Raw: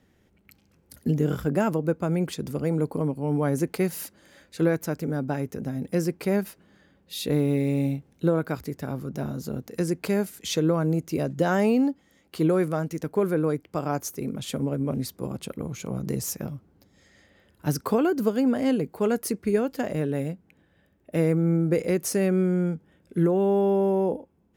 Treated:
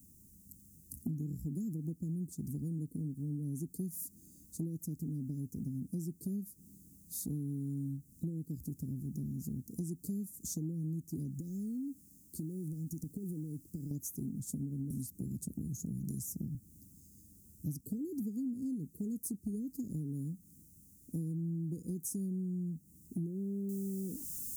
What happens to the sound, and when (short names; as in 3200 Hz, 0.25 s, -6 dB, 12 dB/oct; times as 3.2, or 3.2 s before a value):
11.31–13.91 compressor 4:1, threshold -32 dBFS
14.9–16.55 three-band squash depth 100%
23.69 noise floor step -63 dB -41 dB
whole clip: inverse Chebyshev band-stop 730–2800 Hz, stop band 60 dB; compressor 5:1, threshold -39 dBFS; gain +2 dB